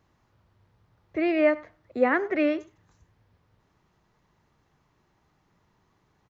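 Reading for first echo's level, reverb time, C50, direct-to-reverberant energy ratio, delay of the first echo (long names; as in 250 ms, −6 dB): −22.0 dB, no reverb audible, no reverb audible, no reverb audible, 99 ms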